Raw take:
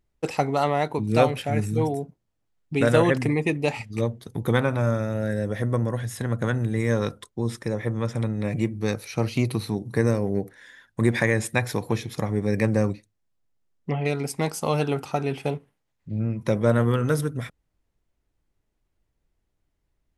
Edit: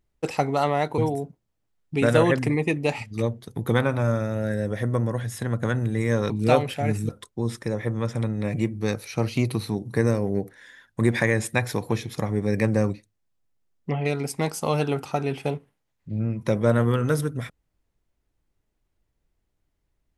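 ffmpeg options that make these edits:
-filter_complex "[0:a]asplit=4[a][b][c][d];[a]atrim=end=0.982[e];[b]atrim=start=1.768:end=7.092[f];[c]atrim=start=0.978:end=1.772[g];[d]atrim=start=7.088[h];[e][f]acrossfade=d=0.004:c1=hsin:c2=hsin[i];[i][g]acrossfade=d=0.004:c1=hsin:c2=hsin[j];[j][h]acrossfade=d=0.004:c1=hsin:c2=hsin"

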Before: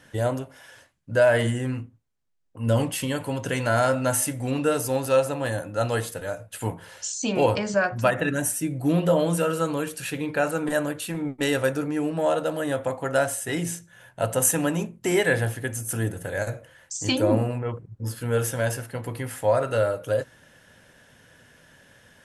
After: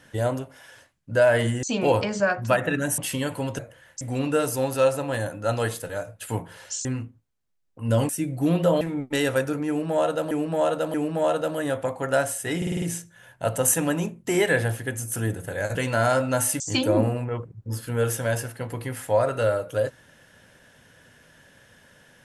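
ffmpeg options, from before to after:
-filter_complex "[0:a]asplit=17[a][b][c][d][e][f][g][h][i][j][k][l][m][n][o][p][q];[a]atrim=end=1.632[r];[b]atrim=start=7.168:end=8.522[s];[c]atrim=start=2.868:end=3.482[t];[d]atrim=start=16.518:end=16.942[u];[e]atrim=start=4.328:end=7.172[v];[f]atrim=start=1.628:end=2.872[w];[g]atrim=start=8.518:end=9.242[x];[h]atrim=start=11.088:end=12.592[y];[i]atrim=start=11.958:end=12.592[z];[j]atrim=start=11.958:end=13.642[aa];[k]atrim=start=13.588:end=13.642[ab];[l]atrim=start=13.588:end=13.642[ac];[m]atrim=start=13.588:end=13.642[ad];[n]atrim=start=13.588:end=13.642[ae];[o]atrim=start=13.588:end=16.522[af];[p]atrim=start=3.478:end=4.332[ag];[q]atrim=start=16.938[ah];[r][s]acrossfade=d=0.004:c1=hsin:c2=hsin[ai];[ai][t]acrossfade=d=0.004:c1=hsin:c2=hsin[aj];[aj][u]acrossfade=d=0.004:c1=hsin:c2=hsin[ak];[ak][v]acrossfade=d=0.004:c1=hsin:c2=hsin[al];[al][w]acrossfade=d=0.004:c1=hsin:c2=hsin[am];[am][x]acrossfade=d=0.004:c1=hsin:c2=hsin[an];[an][y]acrossfade=d=0.004:c1=hsin:c2=hsin[ao];[ao][z]acrossfade=d=0.004:c1=hsin:c2=hsin[ap];[ap][aa]acrossfade=d=0.004:c1=hsin:c2=hsin[aq];[aq][ab]acrossfade=d=0.004:c1=hsin:c2=hsin[ar];[ar][ac]acrossfade=d=0.004:c1=hsin:c2=hsin[as];[as][ad]acrossfade=d=0.004:c1=hsin:c2=hsin[at];[at][ae]acrossfade=d=0.004:c1=hsin:c2=hsin[au];[au][af]acrossfade=d=0.004:c1=hsin:c2=hsin[av];[av][ag]acrossfade=d=0.004:c1=hsin:c2=hsin[aw];[aw][ah]acrossfade=d=0.004:c1=hsin:c2=hsin"

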